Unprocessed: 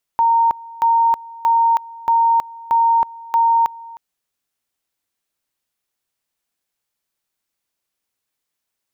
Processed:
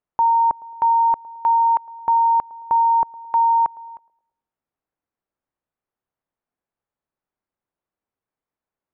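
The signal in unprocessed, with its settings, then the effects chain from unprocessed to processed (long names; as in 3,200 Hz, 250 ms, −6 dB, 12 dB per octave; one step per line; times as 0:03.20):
tone at two levels in turn 922 Hz −11 dBFS, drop 21.5 dB, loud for 0.32 s, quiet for 0.31 s, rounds 6
low-pass filter 1,200 Hz 12 dB per octave
feedback echo with a band-pass in the loop 109 ms, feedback 51%, band-pass 470 Hz, level −20.5 dB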